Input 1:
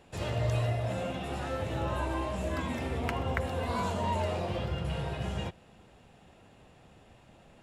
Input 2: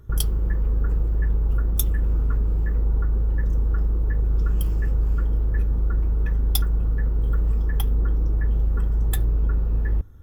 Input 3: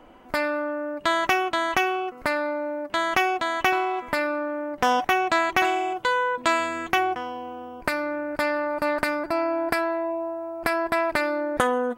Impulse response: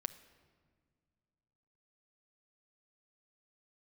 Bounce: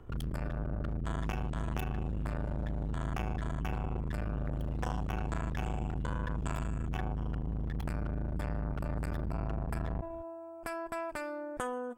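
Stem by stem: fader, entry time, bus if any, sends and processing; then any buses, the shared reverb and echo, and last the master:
-19.5 dB, 1.10 s, muted 3.61–4.16 s, no send, comb 3.6 ms, depth 92%
+0.5 dB, 0.00 s, no send, three-band isolator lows -13 dB, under 180 Hz, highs -16 dB, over 3.1 kHz; overload inside the chain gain 34.5 dB
-13.5 dB, 0.00 s, no send, graphic EQ with 31 bands 2 kHz -8 dB, 4 kHz -11 dB, 8 kHz +9 dB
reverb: none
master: bass shelf 66 Hz +11.5 dB; transformer saturation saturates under 410 Hz

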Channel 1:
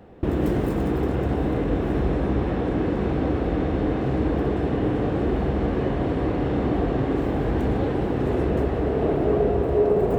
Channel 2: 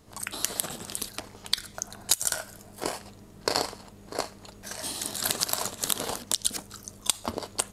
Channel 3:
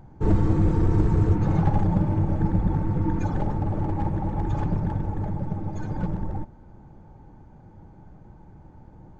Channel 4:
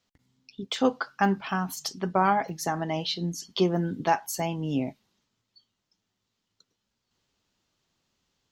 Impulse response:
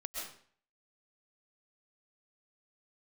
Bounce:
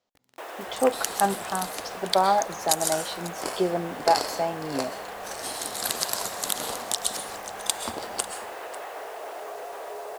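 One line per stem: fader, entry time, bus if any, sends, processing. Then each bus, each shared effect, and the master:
-0.5 dB, 0.15 s, send -13 dB, no echo send, high-pass 670 Hz 24 dB/octave; peak limiter -29.5 dBFS, peak gain reduction 9 dB; word length cut 8-bit, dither none
-4.0 dB, 0.60 s, send -3.5 dB, echo send -15 dB, none
mute
-7.5 dB, 0.00 s, no send, no echo send, peaking EQ 610 Hz +13.5 dB 1.7 oct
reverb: on, RT60 0.50 s, pre-delay 90 ms
echo: delay 545 ms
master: bass shelf 220 Hz -4.5 dB

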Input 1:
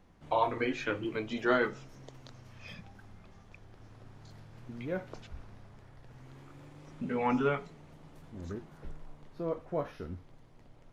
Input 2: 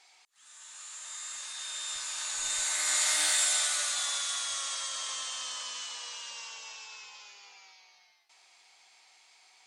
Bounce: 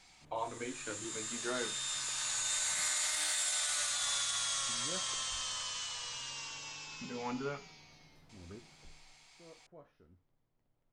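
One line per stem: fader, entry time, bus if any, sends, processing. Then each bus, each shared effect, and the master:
8.66 s -10 dB -> 9.39 s -22.5 dB, 0.00 s, no send, none
-1.0 dB, 0.00 s, no send, none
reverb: none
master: peak limiter -24.5 dBFS, peak gain reduction 9 dB

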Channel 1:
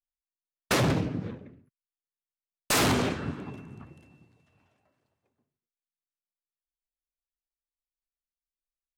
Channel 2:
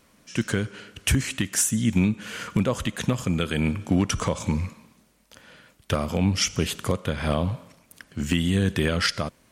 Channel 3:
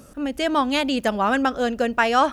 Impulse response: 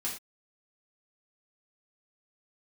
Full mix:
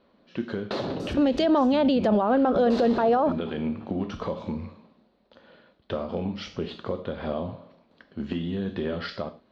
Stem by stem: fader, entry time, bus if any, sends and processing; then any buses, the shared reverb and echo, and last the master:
-5.5 dB, 0.00 s, bus A, send -13 dB, treble shelf 10 kHz -10 dB; compression 4:1, threshold -30 dBFS, peak gain reduction 6.5 dB
-10.5 dB, 0.00 s, bus A, send -10.5 dB, low-pass 2.9 kHz 12 dB/octave
+2.0 dB, 1.00 s, no bus, send -20.5 dB, low-pass that closes with the level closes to 880 Hz, closed at -15 dBFS; peak limiter -17.5 dBFS, peak gain reduction 10 dB
bus A: 0.0 dB, elliptic low-pass 4.4 kHz; compression, threshold -36 dBFS, peak gain reduction 9 dB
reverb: on, pre-delay 3 ms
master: FFT filter 120 Hz 0 dB, 240 Hz +8 dB, 550 Hz +12 dB, 2.3 kHz -1 dB, 4.1 kHz +14 dB, 9.8 kHz -10 dB; peak limiter -14.5 dBFS, peak gain reduction 10.5 dB

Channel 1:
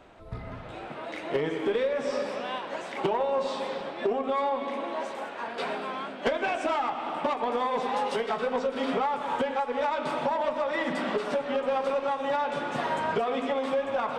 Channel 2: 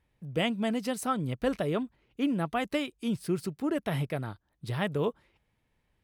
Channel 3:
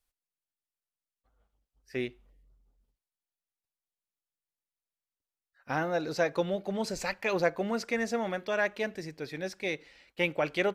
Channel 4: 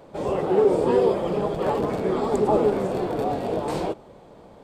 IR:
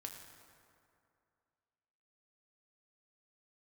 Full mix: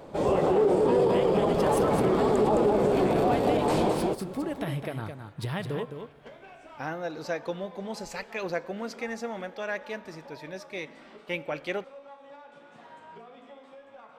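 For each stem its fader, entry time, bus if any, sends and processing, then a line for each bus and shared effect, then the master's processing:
-12.0 dB, 0.00 s, no send, no echo send, feedback comb 56 Hz, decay 0.72 s, harmonics all, mix 80%
+3.0 dB, 0.75 s, send -7.5 dB, echo send -6 dB, compression 6:1, threshold -34 dBFS, peak gain reduction 11 dB
-5.5 dB, 1.10 s, send -8 dB, no echo send, none
+2.0 dB, 0.00 s, no send, echo send -4.5 dB, none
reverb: on, RT60 2.5 s, pre-delay 5 ms
echo: delay 213 ms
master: peak limiter -15 dBFS, peak gain reduction 9.5 dB

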